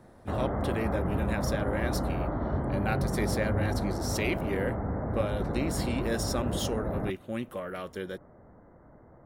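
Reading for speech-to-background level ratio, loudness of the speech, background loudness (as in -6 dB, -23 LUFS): -2.5 dB, -34.5 LUFS, -32.0 LUFS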